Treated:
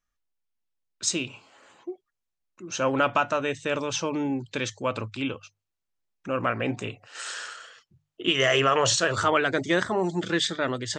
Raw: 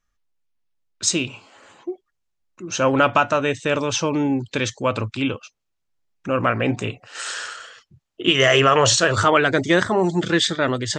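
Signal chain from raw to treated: bass shelf 190 Hz -3 dB; hum notches 50/100/150 Hz; trim -6 dB

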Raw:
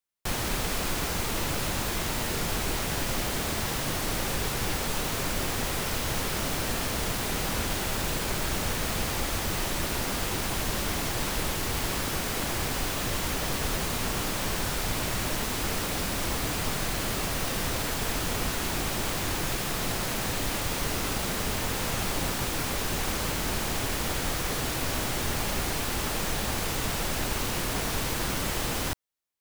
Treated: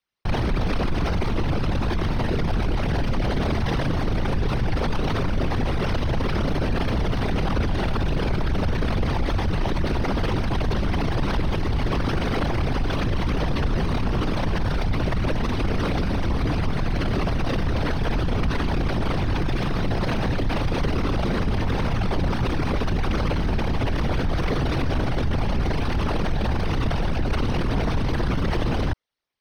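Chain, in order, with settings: resonances exaggerated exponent 2; Savitzky-Golay filter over 15 samples; trim +8 dB

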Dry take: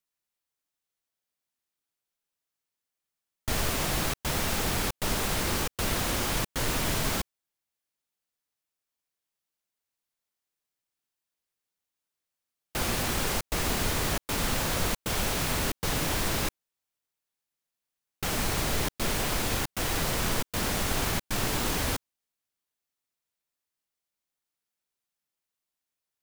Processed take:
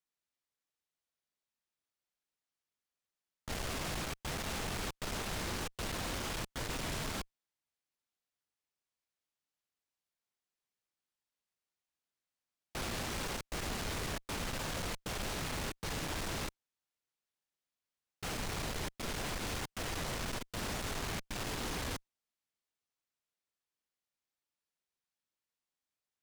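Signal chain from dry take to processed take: median filter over 3 samples; valve stage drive 31 dB, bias 0.35; trim -3.5 dB

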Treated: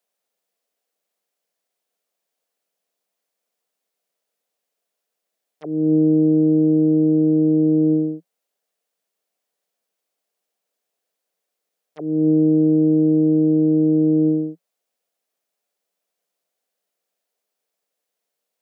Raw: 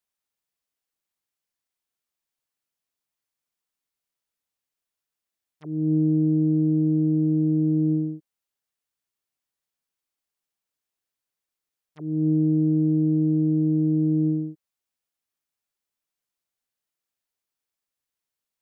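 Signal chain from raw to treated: elliptic high-pass 170 Hz; high-order bell 560 Hz +9 dB 1 oct; trim +6.5 dB

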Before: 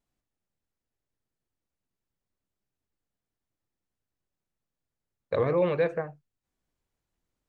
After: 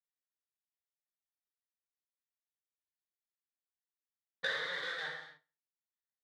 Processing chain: peak limiter -26 dBFS, peak gain reduction 10.5 dB; waveshaping leveller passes 5; transient shaper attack +11 dB, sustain -10 dB; two resonant band-passes 2.6 kHz, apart 0.93 oct; tempo 1.2×; feedback delay 69 ms, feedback 38%, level -22 dB; gated-style reverb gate 320 ms falling, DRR -4 dB; tape noise reduction on one side only decoder only

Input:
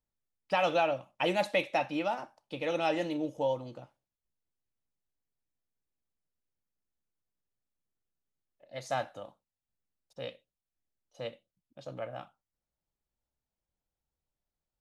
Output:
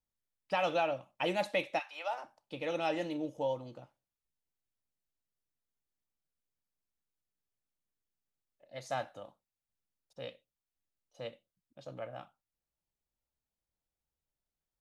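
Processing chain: 1.78–2.23 s: high-pass 1.2 kHz -> 370 Hz 24 dB/octave; trim -3.5 dB

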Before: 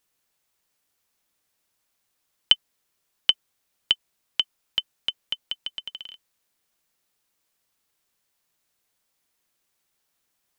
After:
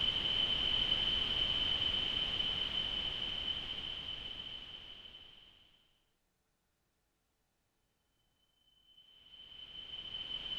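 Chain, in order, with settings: reverse the whole clip; tilt EQ -3.5 dB/octave; Paulstretch 43×, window 0.25 s, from 5.48 s

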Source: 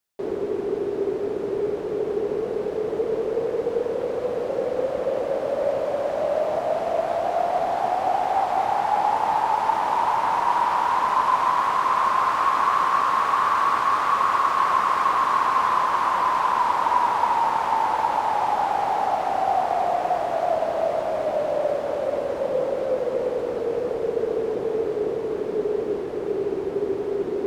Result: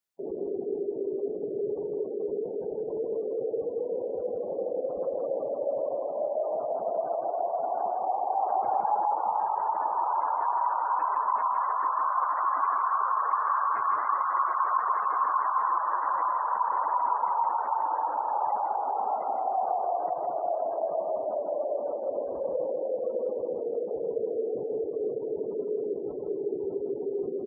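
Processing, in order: spectral gate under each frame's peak -20 dB strong; 8.43–9.07 s: bass shelf 300 Hz +10.5 dB; delay 160 ms -5 dB; trim -7 dB

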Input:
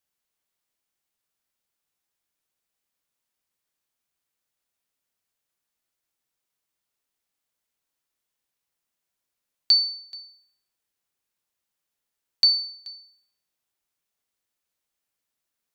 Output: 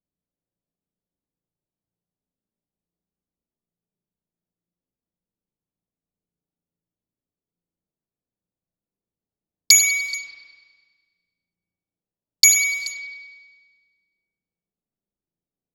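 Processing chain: cycle switcher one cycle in 2, inverted; peaking EQ 180 Hz +10 dB 0.22 oct; level-controlled noise filter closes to 390 Hz, open at -31 dBFS; resonant high shelf 3.2 kHz +7 dB, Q 1.5; spring tank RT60 1.5 s, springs 35 ms, chirp 65 ms, DRR 1.5 dB; loudness maximiser +4.5 dB; trim -1 dB

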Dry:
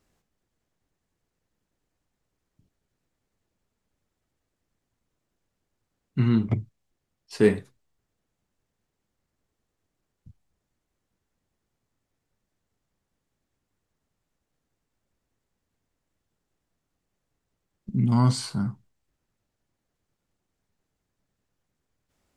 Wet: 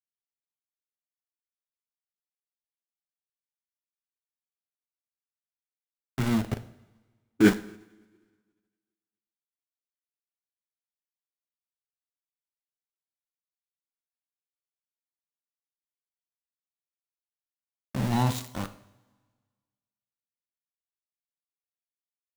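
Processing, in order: bass shelf 160 Hz -9.5 dB; small samples zeroed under -26.5 dBFS; two-slope reverb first 0.57 s, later 1.6 s, from -16 dB, DRR 10 dB; formant shift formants -3 st

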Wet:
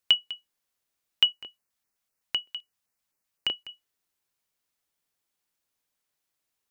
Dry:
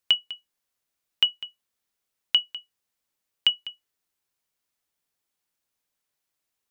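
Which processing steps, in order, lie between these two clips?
1.32–3.69 s: LFO notch square 3.9 Hz 400–3400 Hz

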